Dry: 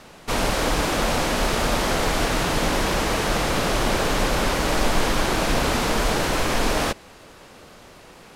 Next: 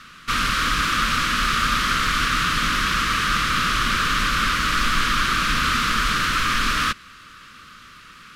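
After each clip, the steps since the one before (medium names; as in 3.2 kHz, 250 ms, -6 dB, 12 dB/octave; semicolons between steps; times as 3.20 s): FFT filter 240 Hz 0 dB, 380 Hz -10 dB, 840 Hz -20 dB, 1.2 kHz +13 dB, 2 kHz +6 dB, 3.2 kHz +8 dB, 8.4 kHz 0 dB; trim -2.5 dB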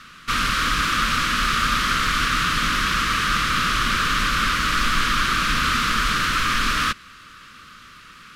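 no audible change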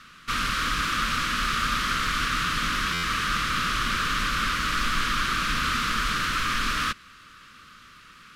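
buffer glitch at 2.93 s, samples 512, times 8; trim -5 dB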